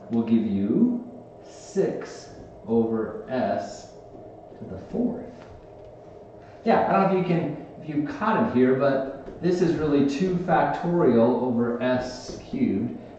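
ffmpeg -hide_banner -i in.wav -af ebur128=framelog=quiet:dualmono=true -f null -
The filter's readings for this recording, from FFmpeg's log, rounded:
Integrated loudness:
  I:         -21.1 LUFS
  Threshold: -32.3 LUFS
Loudness range:
  LRA:         8.0 LU
  Threshold: -42.4 LUFS
  LRA low:   -27.7 LUFS
  LRA high:  -19.7 LUFS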